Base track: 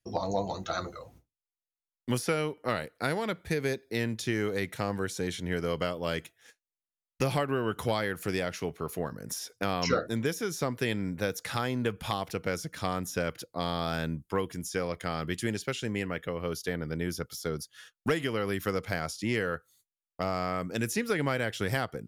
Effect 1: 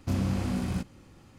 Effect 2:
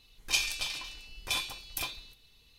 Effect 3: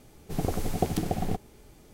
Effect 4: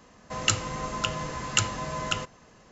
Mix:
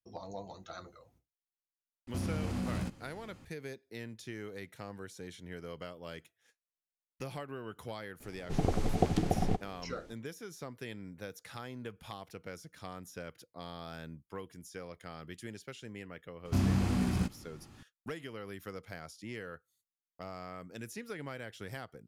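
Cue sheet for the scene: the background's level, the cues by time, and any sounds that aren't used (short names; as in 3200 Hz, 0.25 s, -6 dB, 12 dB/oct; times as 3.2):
base track -13.5 dB
2.07 add 1 -1.5 dB + compressor, threshold -29 dBFS
8.2 add 3 -1 dB + air absorption 67 m
16.45 add 1 -0.5 dB + notch 520 Hz, Q 6.2
not used: 2, 4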